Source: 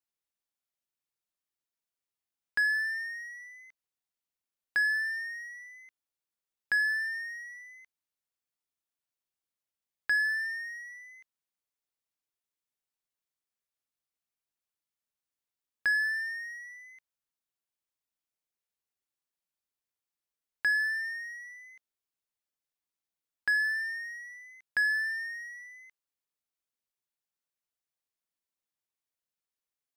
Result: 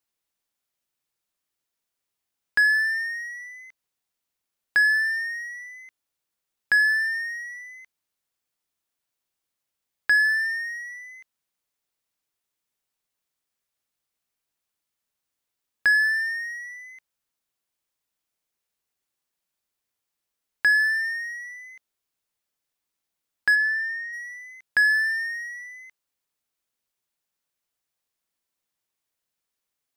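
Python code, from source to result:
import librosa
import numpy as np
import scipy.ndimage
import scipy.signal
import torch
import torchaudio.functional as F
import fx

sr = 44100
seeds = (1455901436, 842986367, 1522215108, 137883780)

y = fx.riaa(x, sr, side='playback', at=(23.54, 24.12), fade=0.02)
y = y * 10.0 ** (8.0 / 20.0)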